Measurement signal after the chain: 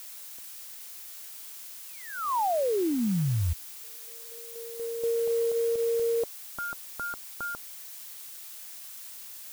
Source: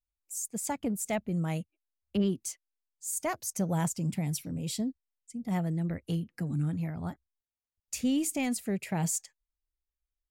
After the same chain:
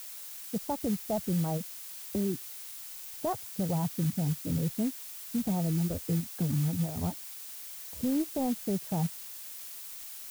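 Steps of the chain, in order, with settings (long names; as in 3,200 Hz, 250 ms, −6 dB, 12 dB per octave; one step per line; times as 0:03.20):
camcorder AGC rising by 7.4 dB per second
reverb reduction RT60 1 s
Bessel low-pass filter 690 Hz, order 6
dynamic equaliser 270 Hz, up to −6 dB, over −46 dBFS, Q 2
brickwall limiter −31.5 dBFS
background noise blue −52 dBFS
floating-point word with a short mantissa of 2 bits
level +8.5 dB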